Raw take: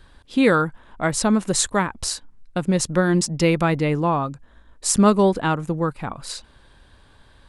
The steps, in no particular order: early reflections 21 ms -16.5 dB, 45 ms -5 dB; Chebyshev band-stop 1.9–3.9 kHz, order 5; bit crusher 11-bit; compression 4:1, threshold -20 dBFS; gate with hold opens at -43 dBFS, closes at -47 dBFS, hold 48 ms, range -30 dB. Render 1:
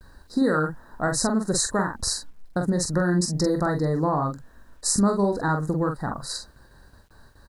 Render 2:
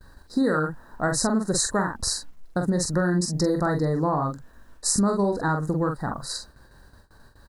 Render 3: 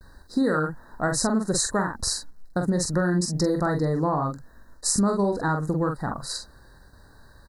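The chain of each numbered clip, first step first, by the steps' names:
compression > Chebyshev band-stop > gate with hold > early reflections > bit crusher; Chebyshev band-stop > bit crusher > gate with hold > early reflections > compression; gate with hold > early reflections > bit crusher > compression > Chebyshev band-stop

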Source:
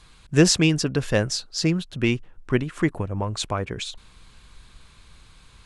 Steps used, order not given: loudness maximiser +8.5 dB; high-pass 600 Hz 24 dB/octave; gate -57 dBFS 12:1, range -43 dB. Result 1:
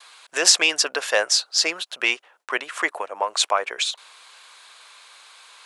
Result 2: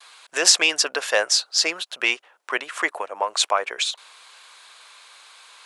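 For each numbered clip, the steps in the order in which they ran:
loudness maximiser > high-pass > gate; gate > loudness maximiser > high-pass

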